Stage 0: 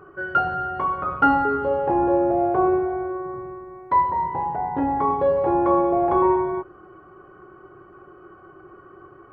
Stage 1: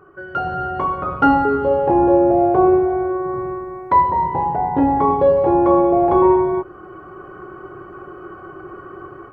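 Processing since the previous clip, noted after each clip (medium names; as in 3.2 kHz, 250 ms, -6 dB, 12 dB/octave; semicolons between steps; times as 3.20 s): dynamic bell 1.5 kHz, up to -6 dB, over -35 dBFS, Q 0.89; level rider gain up to 12.5 dB; trim -2 dB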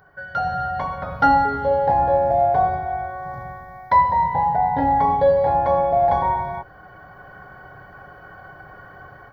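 treble shelf 2.1 kHz +12 dB; static phaser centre 1.8 kHz, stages 8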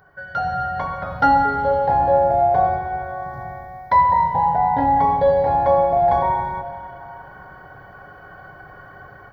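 reverberation RT60 2.7 s, pre-delay 52 ms, DRR 9 dB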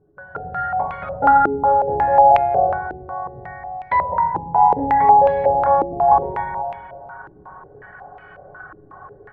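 feedback comb 420 Hz, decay 0.53 s, mix 80%; step-sequenced low-pass 5.5 Hz 330–2500 Hz; trim +9 dB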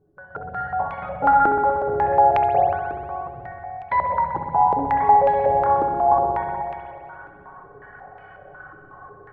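spring tank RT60 2.2 s, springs 60 ms, chirp 25 ms, DRR 4.5 dB; trim -3.5 dB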